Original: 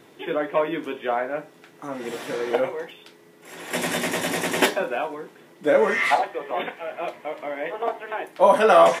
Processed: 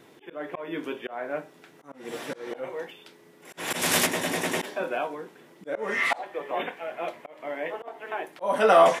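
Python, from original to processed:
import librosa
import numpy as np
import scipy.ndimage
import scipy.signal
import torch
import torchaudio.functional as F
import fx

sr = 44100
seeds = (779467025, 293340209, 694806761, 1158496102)

y = fx.auto_swell(x, sr, attack_ms=244.0)
y = fx.spectral_comp(y, sr, ratio=2.0, at=(3.57, 4.05), fade=0.02)
y = y * librosa.db_to_amplitude(-2.5)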